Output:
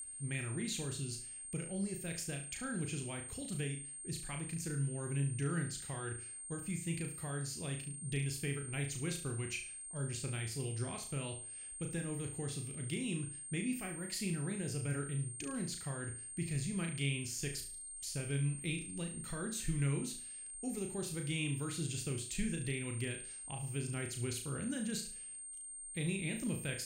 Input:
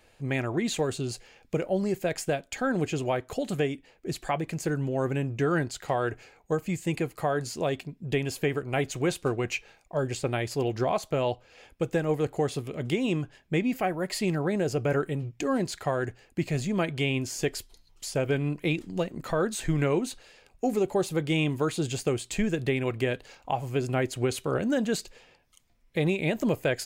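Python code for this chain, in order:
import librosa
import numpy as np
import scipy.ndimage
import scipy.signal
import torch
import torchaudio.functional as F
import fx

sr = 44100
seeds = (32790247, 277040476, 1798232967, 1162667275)

y = fx.tone_stack(x, sr, knobs='6-0-2')
y = y + 10.0 ** (-49.0 / 20.0) * np.sin(2.0 * np.pi * 8700.0 * np.arange(len(y)) / sr)
y = fx.room_flutter(y, sr, wall_m=6.1, rt60_s=0.4)
y = y * librosa.db_to_amplitude(7.0)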